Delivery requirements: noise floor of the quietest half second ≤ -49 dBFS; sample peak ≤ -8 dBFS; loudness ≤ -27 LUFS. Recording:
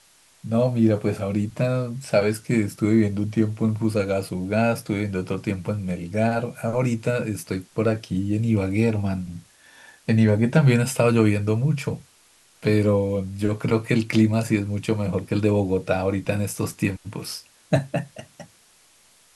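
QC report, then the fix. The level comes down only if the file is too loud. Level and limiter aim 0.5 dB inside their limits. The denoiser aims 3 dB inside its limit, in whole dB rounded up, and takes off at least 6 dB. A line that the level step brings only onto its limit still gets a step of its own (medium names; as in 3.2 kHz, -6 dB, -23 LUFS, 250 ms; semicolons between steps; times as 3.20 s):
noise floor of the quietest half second -57 dBFS: pass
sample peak -5.5 dBFS: fail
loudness -23.0 LUFS: fail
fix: trim -4.5 dB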